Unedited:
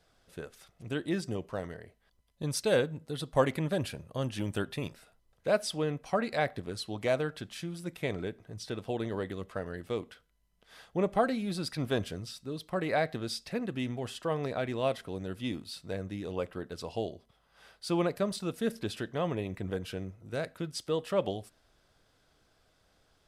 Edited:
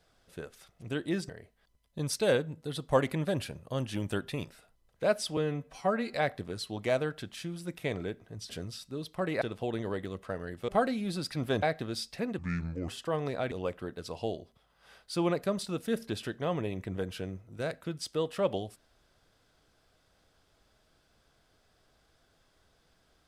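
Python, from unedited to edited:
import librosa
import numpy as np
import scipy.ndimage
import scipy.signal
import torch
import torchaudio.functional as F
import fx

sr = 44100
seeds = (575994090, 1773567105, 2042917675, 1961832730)

y = fx.edit(x, sr, fx.cut(start_s=1.29, length_s=0.44),
    fx.stretch_span(start_s=5.81, length_s=0.51, factor=1.5),
    fx.cut(start_s=9.95, length_s=1.15),
    fx.move(start_s=12.04, length_s=0.92, to_s=8.68),
    fx.speed_span(start_s=13.72, length_s=0.34, speed=0.68),
    fx.cut(start_s=14.69, length_s=1.56), tone=tone)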